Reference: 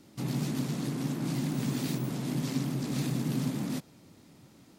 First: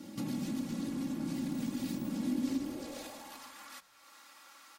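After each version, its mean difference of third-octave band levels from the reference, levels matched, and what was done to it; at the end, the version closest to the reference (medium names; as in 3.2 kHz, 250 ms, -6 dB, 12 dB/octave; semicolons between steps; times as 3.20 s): 6.0 dB: comb 3.6 ms, depth 96%; compression 2.5:1, threshold -47 dBFS, peak gain reduction 16.5 dB; high-pass sweep 140 Hz -> 1.2 kHz, 2.00–3.55 s; on a send: frequency-shifting echo 91 ms, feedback 63%, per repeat -66 Hz, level -21 dB; on the sum: trim +3.5 dB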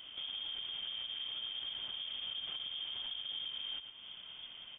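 16.5 dB: delay 112 ms -13.5 dB; frequency inversion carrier 3.4 kHz; compression 5:1, threshold -45 dBFS, peak gain reduction 17.5 dB; peak limiter -39.5 dBFS, peak gain reduction 6 dB; trim +6 dB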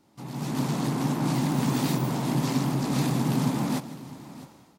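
3.5 dB: peaking EQ 910 Hz +10 dB 0.9 oct; level rider gain up to 14 dB; vibrato 12 Hz 27 cents; multi-tap echo 159/655 ms -16/-17 dB; trim -8.5 dB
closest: third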